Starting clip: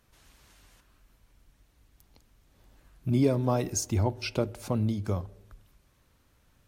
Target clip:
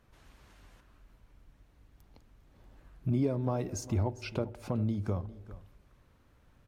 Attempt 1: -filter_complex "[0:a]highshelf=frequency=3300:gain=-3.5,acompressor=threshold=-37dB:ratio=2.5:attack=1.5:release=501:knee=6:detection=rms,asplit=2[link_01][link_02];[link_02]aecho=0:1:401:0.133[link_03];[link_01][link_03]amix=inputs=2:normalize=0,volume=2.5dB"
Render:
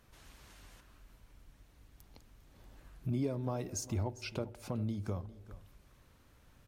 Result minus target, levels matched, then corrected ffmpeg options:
8,000 Hz band +6.5 dB; downward compressor: peak gain reduction +5 dB
-filter_complex "[0:a]highshelf=frequency=3300:gain=-12.5,acompressor=threshold=-28.5dB:ratio=2.5:attack=1.5:release=501:knee=6:detection=rms,asplit=2[link_01][link_02];[link_02]aecho=0:1:401:0.133[link_03];[link_01][link_03]amix=inputs=2:normalize=0,volume=2.5dB"

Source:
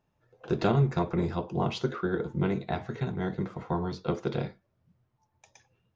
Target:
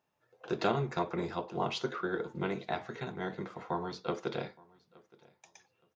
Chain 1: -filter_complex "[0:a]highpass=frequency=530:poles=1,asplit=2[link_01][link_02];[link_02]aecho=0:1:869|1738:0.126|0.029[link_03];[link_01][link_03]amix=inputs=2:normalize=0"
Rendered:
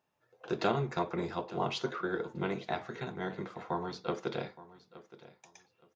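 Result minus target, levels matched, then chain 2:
echo-to-direct +7 dB
-filter_complex "[0:a]highpass=frequency=530:poles=1,asplit=2[link_01][link_02];[link_02]aecho=0:1:869|1738:0.0562|0.0129[link_03];[link_01][link_03]amix=inputs=2:normalize=0"

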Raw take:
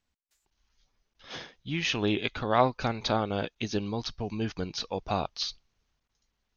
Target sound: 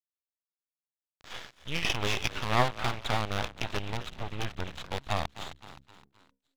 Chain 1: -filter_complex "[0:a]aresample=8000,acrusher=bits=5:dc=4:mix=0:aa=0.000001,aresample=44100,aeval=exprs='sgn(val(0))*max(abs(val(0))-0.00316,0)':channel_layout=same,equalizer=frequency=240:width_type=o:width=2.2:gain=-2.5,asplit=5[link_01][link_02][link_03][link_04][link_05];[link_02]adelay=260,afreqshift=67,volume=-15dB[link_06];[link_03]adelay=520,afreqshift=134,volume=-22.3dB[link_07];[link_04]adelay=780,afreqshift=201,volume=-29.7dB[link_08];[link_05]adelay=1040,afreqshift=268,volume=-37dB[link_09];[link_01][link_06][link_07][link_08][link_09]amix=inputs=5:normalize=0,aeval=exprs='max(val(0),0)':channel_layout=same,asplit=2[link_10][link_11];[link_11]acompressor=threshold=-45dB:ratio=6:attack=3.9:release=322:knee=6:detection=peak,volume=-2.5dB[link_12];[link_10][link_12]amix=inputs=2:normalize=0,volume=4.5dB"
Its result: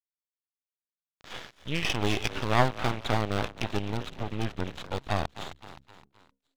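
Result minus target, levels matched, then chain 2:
250 Hz band +4.5 dB
-filter_complex "[0:a]aresample=8000,acrusher=bits=5:dc=4:mix=0:aa=0.000001,aresample=44100,aeval=exprs='sgn(val(0))*max(abs(val(0))-0.00316,0)':channel_layout=same,equalizer=frequency=240:width_type=o:width=2.2:gain=-11.5,asplit=5[link_01][link_02][link_03][link_04][link_05];[link_02]adelay=260,afreqshift=67,volume=-15dB[link_06];[link_03]adelay=520,afreqshift=134,volume=-22.3dB[link_07];[link_04]adelay=780,afreqshift=201,volume=-29.7dB[link_08];[link_05]adelay=1040,afreqshift=268,volume=-37dB[link_09];[link_01][link_06][link_07][link_08][link_09]amix=inputs=5:normalize=0,aeval=exprs='max(val(0),0)':channel_layout=same,asplit=2[link_10][link_11];[link_11]acompressor=threshold=-45dB:ratio=6:attack=3.9:release=322:knee=6:detection=peak,volume=-2.5dB[link_12];[link_10][link_12]amix=inputs=2:normalize=0,volume=4.5dB"

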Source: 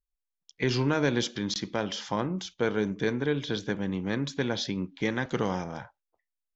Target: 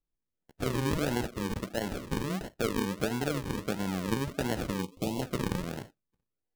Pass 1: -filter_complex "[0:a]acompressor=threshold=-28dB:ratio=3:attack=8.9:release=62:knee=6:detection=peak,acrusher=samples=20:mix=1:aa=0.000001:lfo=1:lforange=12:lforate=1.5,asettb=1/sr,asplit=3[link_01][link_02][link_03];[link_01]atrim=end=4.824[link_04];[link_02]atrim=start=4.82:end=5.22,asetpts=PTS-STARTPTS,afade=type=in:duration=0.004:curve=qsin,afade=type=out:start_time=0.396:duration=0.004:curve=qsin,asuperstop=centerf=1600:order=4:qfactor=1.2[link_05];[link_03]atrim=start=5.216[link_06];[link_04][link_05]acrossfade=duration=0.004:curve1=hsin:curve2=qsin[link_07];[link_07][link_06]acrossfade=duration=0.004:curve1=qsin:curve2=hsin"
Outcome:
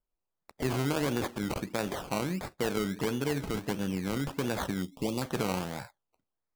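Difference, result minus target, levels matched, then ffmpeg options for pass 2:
sample-and-hold swept by an LFO: distortion −9 dB
-filter_complex "[0:a]acompressor=threshold=-28dB:ratio=3:attack=8.9:release=62:knee=6:detection=peak,acrusher=samples=51:mix=1:aa=0.000001:lfo=1:lforange=30.6:lforate=1.5,asettb=1/sr,asplit=3[link_01][link_02][link_03];[link_01]atrim=end=4.824[link_04];[link_02]atrim=start=4.82:end=5.22,asetpts=PTS-STARTPTS,afade=type=in:duration=0.004:curve=qsin,afade=type=out:start_time=0.396:duration=0.004:curve=qsin,asuperstop=centerf=1600:order=4:qfactor=1.2[link_05];[link_03]atrim=start=5.216[link_06];[link_04][link_05]acrossfade=duration=0.004:curve1=hsin:curve2=qsin[link_07];[link_07][link_06]acrossfade=duration=0.004:curve1=qsin:curve2=hsin"

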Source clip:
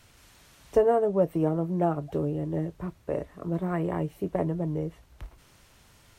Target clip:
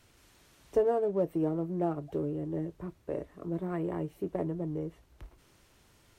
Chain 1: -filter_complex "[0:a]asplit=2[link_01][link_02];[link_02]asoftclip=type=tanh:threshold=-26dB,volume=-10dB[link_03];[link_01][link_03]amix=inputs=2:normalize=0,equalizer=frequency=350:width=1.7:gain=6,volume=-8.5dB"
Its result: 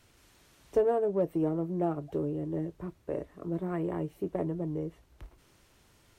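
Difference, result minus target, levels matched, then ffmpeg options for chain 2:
soft clipping: distortion −5 dB
-filter_complex "[0:a]asplit=2[link_01][link_02];[link_02]asoftclip=type=tanh:threshold=-36.5dB,volume=-10dB[link_03];[link_01][link_03]amix=inputs=2:normalize=0,equalizer=frequency=350:width=1.7:gain=6,volume=-8.5dB"

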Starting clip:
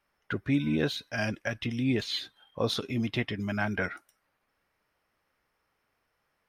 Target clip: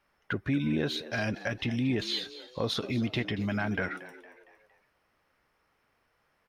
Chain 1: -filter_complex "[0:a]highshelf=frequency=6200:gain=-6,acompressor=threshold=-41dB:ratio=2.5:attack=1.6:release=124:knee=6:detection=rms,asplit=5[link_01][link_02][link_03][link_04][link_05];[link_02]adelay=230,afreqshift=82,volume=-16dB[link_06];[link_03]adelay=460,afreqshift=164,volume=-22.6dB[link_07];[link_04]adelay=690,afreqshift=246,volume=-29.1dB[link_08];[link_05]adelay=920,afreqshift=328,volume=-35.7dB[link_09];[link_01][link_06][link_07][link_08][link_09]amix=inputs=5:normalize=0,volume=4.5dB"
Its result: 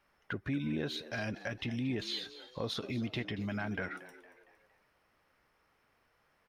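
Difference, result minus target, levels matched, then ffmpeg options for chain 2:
downward compressor: peak gain reduction +6.5 dB
-filter_complex "[0:a]highshelf=frequency=6200:gain=-6,acompressor=threshold=-30.5dB:ratio=2.5:attack=1.6:release=124:knee=6:detection=rms,asplit=5[link_01][link_02][link_03][link_04][link_05];[link_02]adelay=230,afreqshift=82,volume=-16dB[link_06];[link_03]adelay=460,afreqshift=164,volume=-22.6dB[link_07];[link_04]adelay=690,afreqshift=246,volume=-29.1dB[link_08];[link_05]adelay=920,afreqshift=328,volume=-35.7dB[link_09];[link_01][link_06][link_07][link_08][link_09]amix=inputs=5:normalize=0,volume=4.5dB"

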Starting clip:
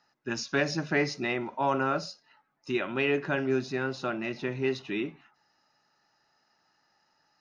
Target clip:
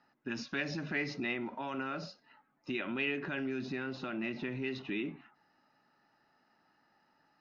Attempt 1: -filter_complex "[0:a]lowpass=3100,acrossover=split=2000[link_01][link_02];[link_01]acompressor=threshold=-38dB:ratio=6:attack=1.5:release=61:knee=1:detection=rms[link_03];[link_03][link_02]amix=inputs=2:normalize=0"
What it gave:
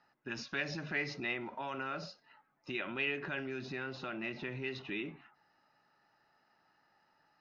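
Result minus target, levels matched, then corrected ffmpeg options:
250 Hz band −4.0 dB
-filter_complex "[0:a]lowpass=3100,acrossover=split=2000[link_01][link_02];[link_01]acompressor=threshold=-38dB:ratio=6:attack=1.5:release=61:knee=1:detection=rms,equalizer=frequency=250:width=1.7:gain=7.5[link_03];[link_03][link_02]amix=inputs=2:normalize=0"

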